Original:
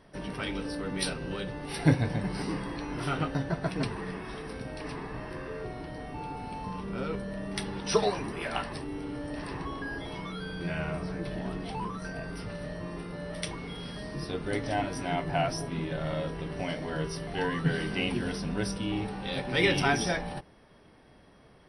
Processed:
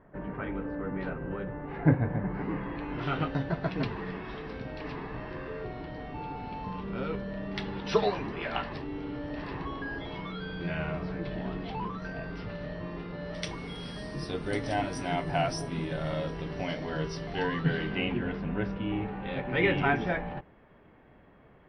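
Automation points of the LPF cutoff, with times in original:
LPF 24 dB/oct
2.27 s 1800 Hz
3.18 s 4100 Hz
13.18 s 4100 Hz
13.62 s 9200 Hz
15.98 s 9200 Hz
16.6 s 5600 Hz
17.33 s 5600 Hz
18.21 s 2600 Hz

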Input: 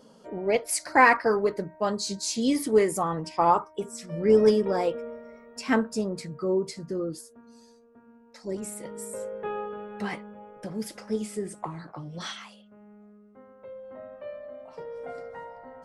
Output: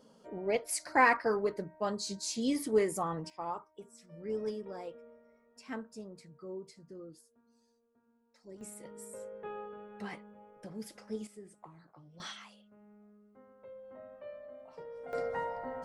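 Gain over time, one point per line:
-7 dB
from 3.3 s -17.5 dB
from 8.61 s -10 dB
from 11.27 s -18 dB
from 12.2 s -7.5 dB
from 15.13 s +5 dB

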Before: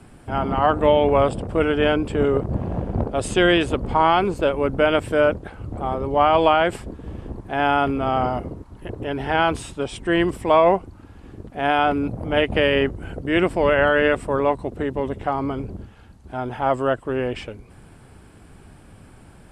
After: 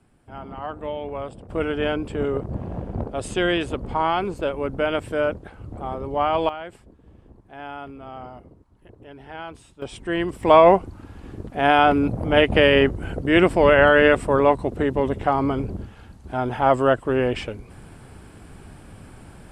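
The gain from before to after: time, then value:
-14 dB
from 1.5 s -5 dB
from 6.49 s -16.5 dB
from 9.82 s -5 dB
from 10.43 s +3 dB

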